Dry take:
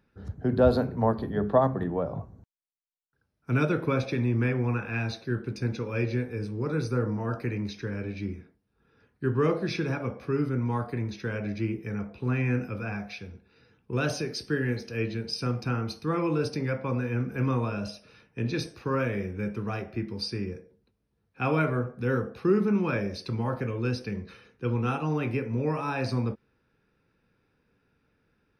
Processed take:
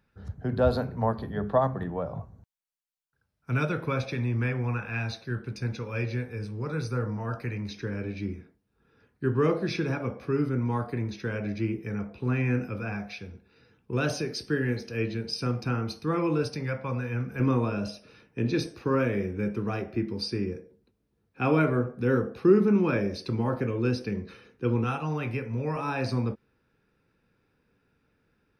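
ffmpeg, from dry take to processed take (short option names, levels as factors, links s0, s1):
-af "asetnsamples=n=441:p=0,asendcmd='7.71 equalizer g 1;16.43 equalizer g -6;17.4 equalizer g 5;24.84 equalizer g -5.5;25.76 equalizer g 0.5',equalizer=f=320:t=o:w=1.2:g=-6.5"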